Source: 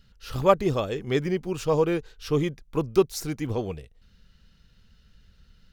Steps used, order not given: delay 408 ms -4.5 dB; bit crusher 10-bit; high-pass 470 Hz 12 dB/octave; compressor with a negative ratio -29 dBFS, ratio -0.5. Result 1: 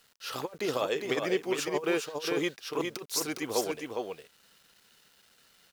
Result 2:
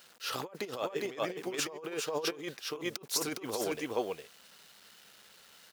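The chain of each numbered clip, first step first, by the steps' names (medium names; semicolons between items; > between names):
high-pass > compressor with a negative ratio > delay > bit crusher; delay > bit crusher > compressor with a negative ratio > high-pass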